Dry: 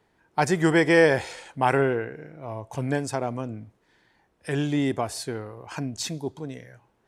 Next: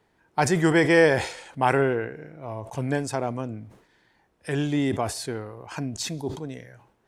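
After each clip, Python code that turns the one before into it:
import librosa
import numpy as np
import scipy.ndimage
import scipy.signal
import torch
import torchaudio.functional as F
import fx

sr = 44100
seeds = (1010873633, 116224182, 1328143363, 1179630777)

y = fx.sustainer(x, sr, db_per_s=100.0)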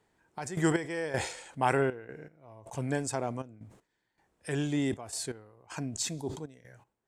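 y = fx.peak_eq(x, sr, hz=7700.0, db=8.5, octaves=0.51)
y = fx.step_gate(y, sr, bpm=79, pattern='xx.x..xx', floor_db=-12.0, edge_ms=4.5)
y = y * librosa.db_to_amplitude(-5.5)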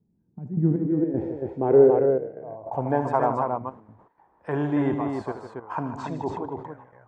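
y = fx.tilt_eq(x, sr, slope=1.5)
y = fx.echo_multitap(y, sr, ms=(76, 154, 278), db=(-11.0, -10.5, -5.0))
y = fx.filter_sweep_lowpass(y, sr, from_hz=190.0, to_hz=1000.0, start_s=0.41, end_s=3.15, q=3.4)
y = y * librosa.db_to_amplitude(7.0)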